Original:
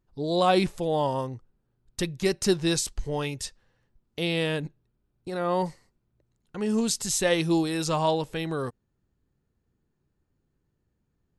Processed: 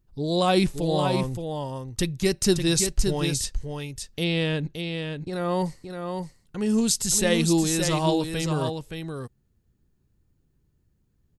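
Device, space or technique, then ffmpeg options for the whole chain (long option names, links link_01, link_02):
smiley-face EQ: -filter_complex "[0:a]asettb=1/sr,asplit=3[link_01][link_02][link_03];[link_01]atrim=end=4.244[link_04];[link_02]atrim=start=4.24:end=5.33,asetpts=PTS-STARTPTS,afade=type=in:duration=0.004:curve=qsin,afade=type=out:start_time=1.086:duration=0.004:curve=qsin,lowpass=5500[link_05];[link_03]atrim=start=5.326[link_06];[link_04][link_05]acrossfade=duration=0.004:curve1=hsin:curve2=qsin[link_07];[link_07][link_06]acrossfade=duration=0.004:curve1=qsin:curve2=hsin,lowshelf=frequency=140:gain=6.5,equalizer=frequency=870:width_type=o:width=2.5:gain=-4.5,highshelf=frequency=7500:gain=5,aecho=1:1:571:0.501,volume=2.5dB"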